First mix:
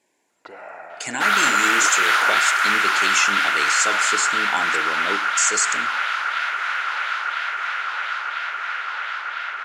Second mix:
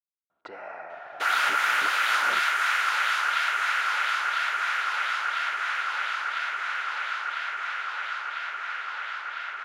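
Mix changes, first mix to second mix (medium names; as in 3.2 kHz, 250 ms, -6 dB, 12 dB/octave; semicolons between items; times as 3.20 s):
speech: muted; second sound -6.0 dB; reverb: off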